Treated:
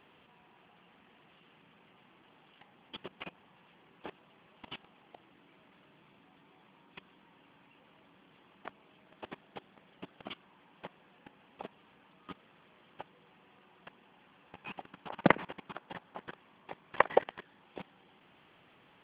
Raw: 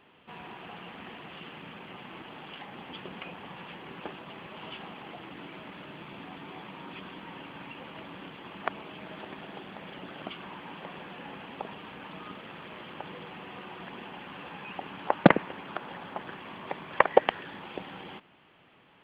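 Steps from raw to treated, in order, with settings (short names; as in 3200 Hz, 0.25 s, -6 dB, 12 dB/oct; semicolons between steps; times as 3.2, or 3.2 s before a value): level quantiser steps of 21 dB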